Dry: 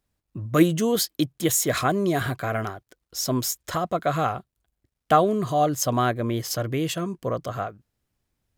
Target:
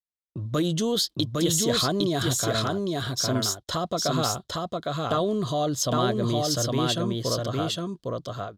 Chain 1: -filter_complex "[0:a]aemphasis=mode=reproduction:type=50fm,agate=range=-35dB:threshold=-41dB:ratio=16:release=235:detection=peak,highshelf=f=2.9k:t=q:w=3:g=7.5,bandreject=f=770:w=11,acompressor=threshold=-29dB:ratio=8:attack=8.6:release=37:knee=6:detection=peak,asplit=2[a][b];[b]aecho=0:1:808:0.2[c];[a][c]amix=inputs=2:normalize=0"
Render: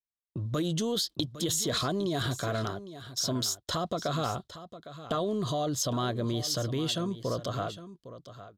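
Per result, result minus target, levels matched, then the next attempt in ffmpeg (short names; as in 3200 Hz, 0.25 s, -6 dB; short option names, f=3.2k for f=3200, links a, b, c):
echo-to-direct -11.5 dB; compressor: peak gain reduction +5.5 dB
-filter_complex "[0:a]aemphasis=mode=reproduction:type=50fm,agate=range=-35dB:threshold=-41dB:ratio=16:release=235:detection=peak,highshelf=f=2.9k:t=q:w=3:g=7.5,bandreject=f=770:w=11,acompressor=threshold=-29dB:ratio=8:attack=8.6:release=37:knee=6:detection=peak,asplit=2[a][b];[b]aecho=0:1:808:0.75[c];[a][c]amix=inputs=2:normalize=0"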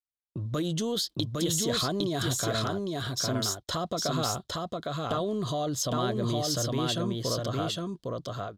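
compressor: peak gain reduction +5.5 dB
-filter_complex "[0:a]aemphasis=mode=reproduction:type=50fm,agate=range=-35dB:threshold=-41dB:ratio=16:release=235:detection=peak,highshelf=f=2.9k:t=q:w=3:g=7.5,bandreject=f=770:w=11,acompressor=threshold=-22.5dB:ratio=8:attack=8.6:release=37:knee=6:detection=peak,asplit=2[a][b];[b]aecho=0:1:808:0.75[c];[a][c]amix=inputs=2:normalize=0"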